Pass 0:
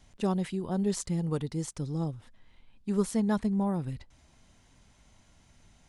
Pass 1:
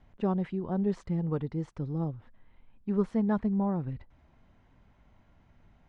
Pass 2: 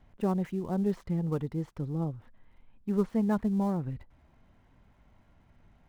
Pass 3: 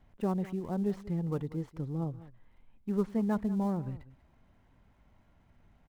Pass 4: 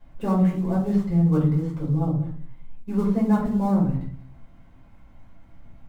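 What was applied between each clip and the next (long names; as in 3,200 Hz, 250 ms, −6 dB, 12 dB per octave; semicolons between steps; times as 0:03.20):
low-pass filter 1,800 Hz 12 dB per octave
gap after every zero crossing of 0.073 ms
single-tap delay 192 ms −17.5 dB; level −2.5 dB
rectangular room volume 330 cubic metres, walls furnished, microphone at 5.2 metres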